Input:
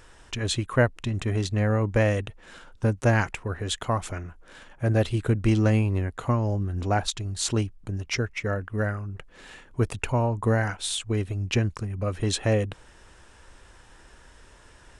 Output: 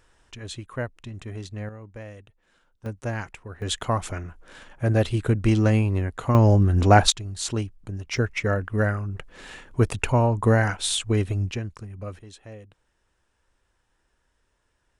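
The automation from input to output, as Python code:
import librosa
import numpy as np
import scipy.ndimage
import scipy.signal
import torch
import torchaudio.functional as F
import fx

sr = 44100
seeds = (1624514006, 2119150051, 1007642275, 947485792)

y = fx.gain(x, sr, db=fx.steps((0.0, -9.5), (1.69, -18.0), (2.86, -8.5), (3.62, 1.5), (6.35, 9.5), (7.12, -2.0), (8.17, 4.0), (11.51, -7.0), (12.19, -19.5)))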